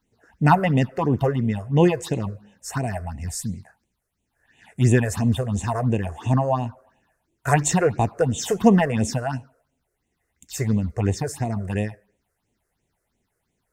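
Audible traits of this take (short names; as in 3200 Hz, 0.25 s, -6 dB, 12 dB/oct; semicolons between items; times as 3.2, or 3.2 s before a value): phasing stages 6, 2.9 Hz, lowest notch 220–1400 Hz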